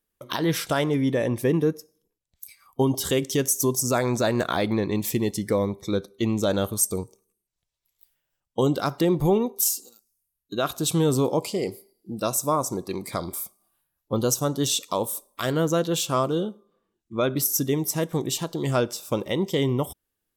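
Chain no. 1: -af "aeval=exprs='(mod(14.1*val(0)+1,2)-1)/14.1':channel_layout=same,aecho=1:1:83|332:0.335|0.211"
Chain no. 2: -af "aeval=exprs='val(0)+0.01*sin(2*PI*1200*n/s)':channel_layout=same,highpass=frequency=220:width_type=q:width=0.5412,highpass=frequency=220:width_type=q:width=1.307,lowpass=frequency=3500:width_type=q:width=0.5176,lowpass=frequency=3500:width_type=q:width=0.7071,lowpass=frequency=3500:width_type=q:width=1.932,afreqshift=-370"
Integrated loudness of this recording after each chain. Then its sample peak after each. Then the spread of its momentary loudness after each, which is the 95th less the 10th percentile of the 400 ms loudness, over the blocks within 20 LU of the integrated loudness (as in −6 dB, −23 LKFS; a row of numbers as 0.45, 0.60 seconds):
−28.0, −29.0 LKFS; −19.5, −10.0 dBFS; 12, 17 LU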